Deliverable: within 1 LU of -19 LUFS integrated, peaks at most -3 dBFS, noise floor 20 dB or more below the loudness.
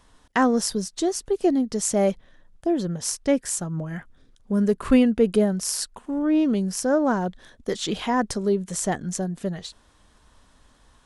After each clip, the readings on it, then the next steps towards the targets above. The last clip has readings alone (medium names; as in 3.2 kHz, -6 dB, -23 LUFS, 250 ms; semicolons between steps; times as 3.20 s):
loudness -24.0 LUFS; peak level -5.5 dBFS; loudness target -19.0 LUFS
-> trim +5 dB; peak limiter -3 dBFS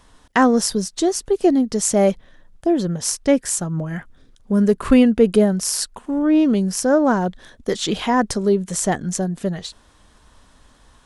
loudness -19.0 LUFS; peak level -3.0 dBFS; noise floor -54 dBFS